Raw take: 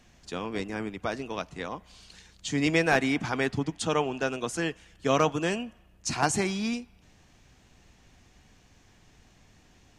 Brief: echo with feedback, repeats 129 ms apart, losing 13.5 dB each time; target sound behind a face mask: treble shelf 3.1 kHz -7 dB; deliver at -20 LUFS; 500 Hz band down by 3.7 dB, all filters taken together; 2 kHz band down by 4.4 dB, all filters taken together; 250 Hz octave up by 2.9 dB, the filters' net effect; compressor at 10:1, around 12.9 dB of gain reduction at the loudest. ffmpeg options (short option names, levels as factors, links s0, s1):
-af "equalizer=f=250:t=o:g=5.5,equalizer=f=500:t=o:g=-6,equalizer=f=2000:t=o:g=-3,acompressor=threshold=0.02:ratio=10,highshelf=f=3100:g=-7,aecho=1:1:129|258:0.211|0.0444,volume=9.44"